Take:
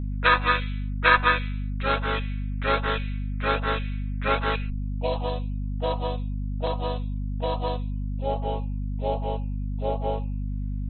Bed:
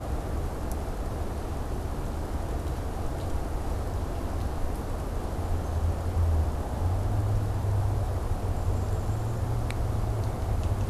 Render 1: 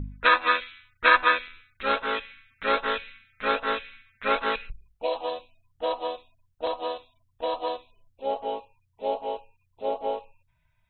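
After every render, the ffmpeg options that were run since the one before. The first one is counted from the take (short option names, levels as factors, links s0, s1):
-af "bandreject=f=50:t=h:w=4,bandreject=f=100:t=h:w=4,bandreject=f=150:t=h:w=4,bandreject=f=200:t=h:w=4,bandreject=f=250:t=h:w=4"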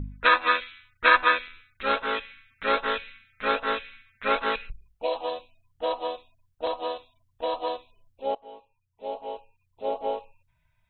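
-filter_complex "[0:a]asplit=2[s0][s1];[s0]atrim=end=8.35,asetpts=PTS-STARTPTS,afade=t=out:st=8.346:d=0.004:c=hsin:silence=0.11885[s2];[s1]atrim=start=8.35,asetpts=PTS-STARTPTS,afade=t=in:d=1.66:silence=0.11885[s3];[s2][s3]concat=n=2:v=0:a=1"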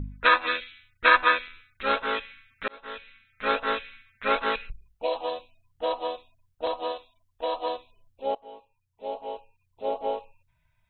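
-filter_complex "[0:a]asettb=1/sr,asplit=3[s0][s1][s2];[s0]atrim=end=0.464[s3];[s1]atrim=start=0.46:end=1.05,asetpts=PTS-STARTPTS,afade=t=in:d=0.004:c=qsin,afade=t=out:st=0.586:d=0.004:c=qsin,equalizer=f=1000:w=1.2:g=-11.5[s4];[s2]atrim=start=1.046[s5];[s3][s4]acrossfade=d=0.004:c1=hsin:c2=qsin[s6];[s6][s5]acrossfade=d=0.004:c1=qsin:c2=hsin,asettb=1/sr,asplit=3[s7][s8][s9];[s7]atrim=end=6.924[s10];[s8]atrim=start=6.92:end=7.66,asetpts=PTS-STARTPTS,afade=t=in:d=0.004:c=qsin,afade=t=out:st=0.736:d=0.004:c=qsin,equalizer=f=140:w=1.5:g=-12.5[s11];[s9]atrim=start=7.656[s12];[s10][s11]acrossfade=d=0.004:c1=hsin:c2=qsin[s13];[s13][s12]acrossfade=d=0.004:c1=qsin:c2=hsin,asplit=2[s14][s15];[s14]atrim=end=2.68,asetpts=PTS-STARTPTS,afade=t=out:st=2.676:d=0.004:c=hsin[s16];[s15]atrim=start=2.68,asetpts=PTS-STARTPTS,afade=t=in:d=0.84[s17];[s16][s17]concat=n=2:v=0:a=1"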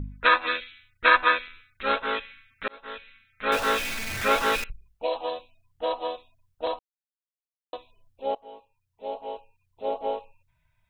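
-filter_complex "[0:a]asettb=1/sr,asplit=3[s0][s1][s2];[s0]atrim=end=3.524[s3];[s1]atrim=start=3.52:end=4.64,asetpts=PTS-STARTPTS,afade=t=in:d=0.004:c=qsin,afade=t=out:st=1.116:d=0.004:c=qsin,aeval=exprs='val(0)+0.5*0.0501*sgn(val(0))':c=same[s4];[s2]atrim=start=4.636[s5];[s3][s4]acrossfade=d=0.004:c1=hsin:c2=qsin[s6];[s6][s5]acrossfade=d=0.004:c1=qsin:c2=hsin,asplit=3[s7][s8][s9];[s7]atrim=end=6.79,asetpts=PTS-STARTPTS,afade=t=out:st=6.786:d=0.004:c=hsin[s10];[s8]atrim=start=6.79:end=7.73,asetpts=PTS-STARTPTS,volume=0[s11];[s9]atrim=start=7.73,asetpts=PTS-STARTPTS,afade=t=in:d=0.004:c=hsin[s12];[s10][s11][s12]concat=n=3:v=0:a=1"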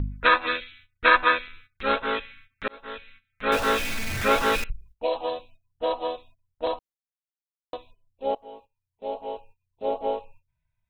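-af "agate=range=0.2:threshold=0.00224:ratio=16:detection=peak,lowshelf=f=340:g=7"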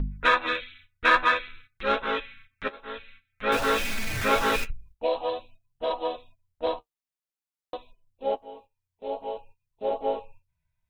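-filter_complex "[0:a]asplit=2[s0][s1];[s1]asoftclip=type=tanh:threshold=0.119,volume=0.447[s2];[s0][s2]amix=inputs=2:normalize=0,flanger=delay=4.6:depth=9.5:regen=-35:speed=0.51:shape=triangular"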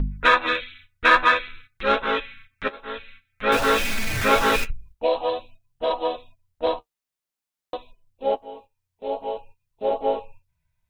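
-af "volume=1.68,alimiter=limit=0.708:level=0:latency=1"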